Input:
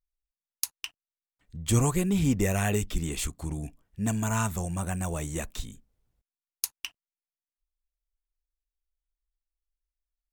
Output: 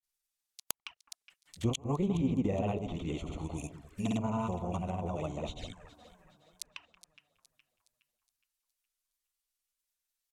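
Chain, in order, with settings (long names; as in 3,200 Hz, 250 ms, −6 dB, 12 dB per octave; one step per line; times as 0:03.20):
spectral tilt +3.5 dB per octave
treble cut that deepens with the level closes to 950 Hz, closed at −26 dBFS
in parallel at 0 dB: downward compressor, threshold −34 dBFS, peak gain reduction 12.5 dB
on the sum: granular cloud 100 ms, grains 20 per second, spray 100 ms, pitch spread up and down by 0 semitones
gate with flip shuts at −15 dBFS, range −26 dB
on a send: delay that swaps between a low-pass and a high-pass 208 ms, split 1,300 Hz, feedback 65%, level −11 dB
on the sum: flanger swept by the level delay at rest 8.5 ms, full sweep at −35.5 dBFS
wrap-around overflow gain 11 dB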